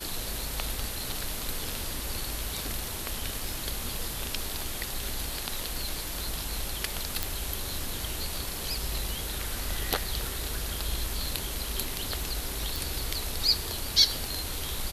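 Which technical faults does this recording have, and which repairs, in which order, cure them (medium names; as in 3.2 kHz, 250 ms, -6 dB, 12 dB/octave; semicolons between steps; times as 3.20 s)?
7.23 s: pop
12.76 s: pop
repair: de-click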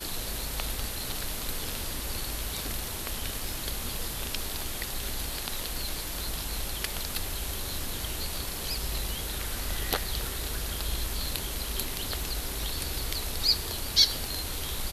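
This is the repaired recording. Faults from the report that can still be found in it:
nothing left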